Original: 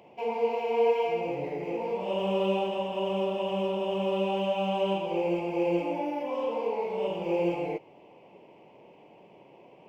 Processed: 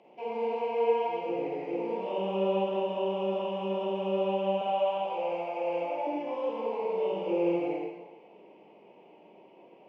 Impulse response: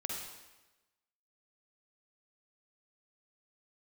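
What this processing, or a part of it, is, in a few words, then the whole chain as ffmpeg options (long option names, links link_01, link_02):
supermarket ceiling speaker: -filter_complex "[0:a]asettb=1/sr,asplit=3[link_01][link_02][link_03];[link_01]atrim=end=4.614[link_04];[link_02]atrim=start=4.61:end=6.07,asetpts=PTS-STARTPTS,afade=type=in:duration=0.004:curve=qsin,afade=type=out:start_time=1.456:duration=0.004:curve=qsin,lowshelf=frequency=490:width_type=q:width=3:gain=-9[link_05];[link_03]atrim=start=6.066[link_06];[link_04][link_05]acrossfade=duration=0.004:curve1=hsin:curve2=qsin[link_07];[link_07][link_06]acrossfade=duration=0.004:curve1=qsin:curve2=hsin,acrossover=split=2700[link_08][link_09];[link_09]acompressor=threshold=-49dB:ratio=4:attack=1:release=60[link_10];[link_08][link_10]amix=inputs=2:normalize=0,highpass=250,lowpass=5000,equalizer=frequency=200:width_type=o:width=2.5:gain=4[link_11];[1:a]atrim=start_sample=2205[link_12];[link_11][link_12]afir=irnorm=-1:irlink=0,volume=-4dB"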